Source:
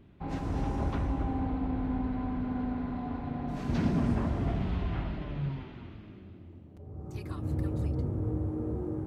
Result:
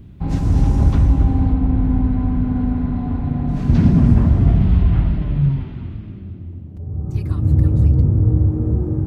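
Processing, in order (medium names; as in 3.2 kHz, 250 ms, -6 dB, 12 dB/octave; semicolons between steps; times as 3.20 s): tone controls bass +14 dB, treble +10 dB, from 1.52 s treble 0 dB; trim +5 dB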